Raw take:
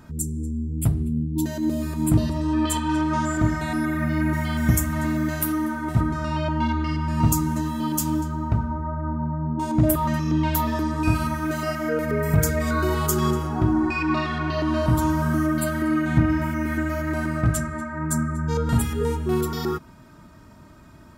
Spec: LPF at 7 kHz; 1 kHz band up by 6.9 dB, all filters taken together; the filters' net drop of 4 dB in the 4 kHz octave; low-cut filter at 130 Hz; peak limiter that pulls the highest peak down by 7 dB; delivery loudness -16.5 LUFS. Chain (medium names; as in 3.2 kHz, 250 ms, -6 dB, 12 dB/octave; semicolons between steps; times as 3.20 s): high-pass 130 Hz; low-pass 7 kHz; peaking EQ 1 kHz +8 dB; peaking EQ 4 kHz -5.5 dB; trim +8 dB; peak limiter -7 dBFS